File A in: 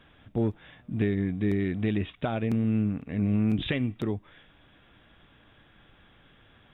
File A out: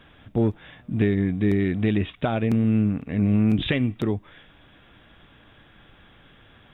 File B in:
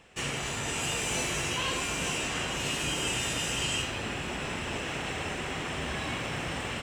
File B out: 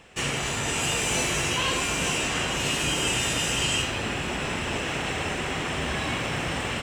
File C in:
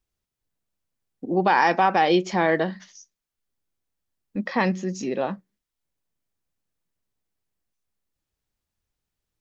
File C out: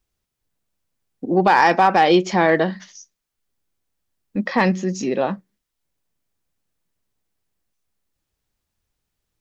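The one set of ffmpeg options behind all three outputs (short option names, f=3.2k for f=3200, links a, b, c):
-af "asoftclip=type=hard:threshold=-9.5dB,acontrast=31"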